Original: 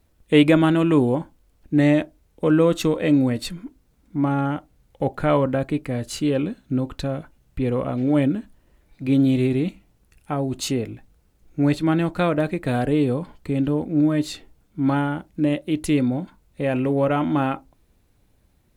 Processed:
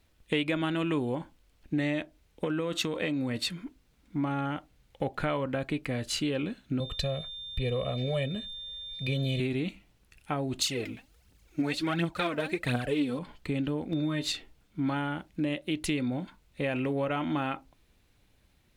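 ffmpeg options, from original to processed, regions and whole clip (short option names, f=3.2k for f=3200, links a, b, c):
-filter_complex "[0:a]asettb=1/sr,asplit=3[a][b][c];[a]atrim=end=2.444[d];[b]atrim=start=2.44:end=3.61,asetpts=PTS-STARTPTS,afade=t=in:d=0.004:c=qsin,afade=t=out:st=1.166:d=0.004:c=qsin,highpass=64,acompressor=threshold=-18dB:ratio=6:attack=3.2:release=140:knee=1:detection=peak[e];[c]atrim=start=3.606[f];[d][e]acrossfade=d=0.004:c1=hsin:c2=qsin[g];[g][f]acrossfade=d=0.004:c1=qsin:c2=hsin,asettb=1/sr,asplit=3[h][i][j];[h]atrim=end=6.804[k];[i]atrim=start=6.8:end=9.4,asetpts=PTS-STARTPTS,afade=t=in:d=0.004:c=qsin,afade=t=out:st=2.596:d=0.004:c=qsin,equalizer=f=1.3k:t=o:w=1.4:g=-9,aecho=1:1:1.7:0.99,atrim=end_sample=114660,aeval=exprs='val(0)+0.00794*sin(2*PI*3600*n/s)':c=same[l];[j]atrim=start=9.396[m];[k][l]acrossfade=d=0.004:c1=hsin:c2=qsin[n];[n][m]acrossfade=d=0.004:c1=qsin:c2=hsin,asettb=1/sr,asplit=3[o][p][q];[o]atrim=end=10.614[r];[p]atrim=start=10.61:end=13.19,asetpts=PTS-STARTPTS,afade=t=in:d=0.004:c=qsin,afade=t=out:st=2.576:d=0.004:c=qsin,highpass=46,aphaser=in_gain=1:out_gain=1:delay=4.7:decay=0.65:speed=1.4:type=triangular,bass=f=250:g=0,treble=f=4k:g=4[s];[q]atrim=start=13.186[t];[r][s]acrossfade=d=0.004:c1=hsin:c2=qsin[u];[u][t]acrossfade=d=0.004:c1=qsin:c2=hsin,asettb=1/sr,asplit=3[v][w][x];[v]atrim=end=13.924[y];[w]atrim=start=13.92:end=14.32,asetpts=PTS-STARTPTS,afade=t=in:d=0.004:c=qsin,afade=t=out:st=0.396:d=0.004:c=qsin,acompressor=mode=upward:threshold=-22dB:ratio=2.5:attack=3.2:release=140:knee=2.83:detection=peak,aeval=exprs='val(0)+0.00447*sin(2*PI*3600*n/s)':c=same,asplit=2[z][aa];[aa]adelay=12,volume=-6.5dB[ab];[z][ab]amix=inputs=2:normalize=0,atrim=end_sample=17640[ac];[x]atrim=start=14.316[ad];[y][ac]acrossfade=d=0.004:c1=hsin:c2=qsin[ae];[ae][ad]acrossfade=d=0.004:c1=qsin:c2=hsin,equalizer=f=3k:w=0.57:g=9,acompressor=threshold=-22dB:ratio=4,volume=-5dB"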